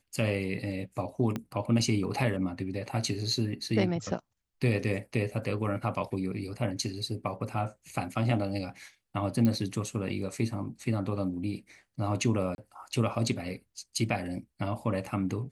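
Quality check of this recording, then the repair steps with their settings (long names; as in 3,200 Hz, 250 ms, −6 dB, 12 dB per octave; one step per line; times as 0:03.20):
0:01.36: click −19 dBFS
0:09.45: click −16 dBFS
0:12.55–0:12.58: drop-out 31 ms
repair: click removal
repair the gap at 0:12.55, 31 ms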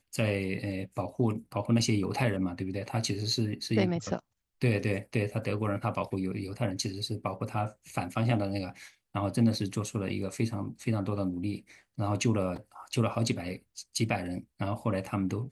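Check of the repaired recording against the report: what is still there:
0:01.36: click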